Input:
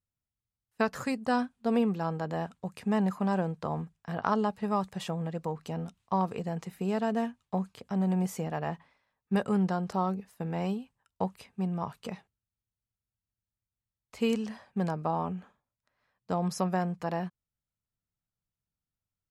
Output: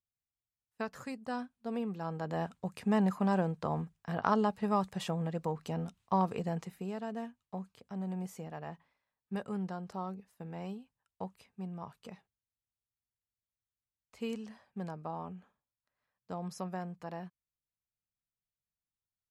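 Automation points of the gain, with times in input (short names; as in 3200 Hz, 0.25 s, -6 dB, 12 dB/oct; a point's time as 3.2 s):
1.81 s -10 dB
2.44 s -1 dB
6.55 s -1 dB
6.95 s -10 dB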